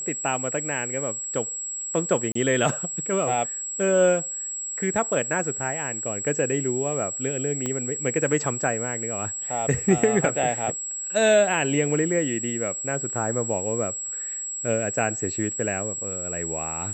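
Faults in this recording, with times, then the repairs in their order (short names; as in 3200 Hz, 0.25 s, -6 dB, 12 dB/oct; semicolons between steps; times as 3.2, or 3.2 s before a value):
tone 7700 Hz -29 dBFS
2.32–2.35 gap 34 ms
7.66 pop -15 dBFS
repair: de-click; notch 7700 Hz, Q 30; interpolate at 2.32, 34 ms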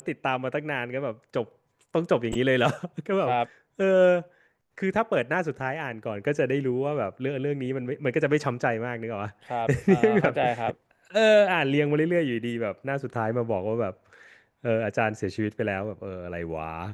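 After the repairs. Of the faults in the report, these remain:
7.66 pop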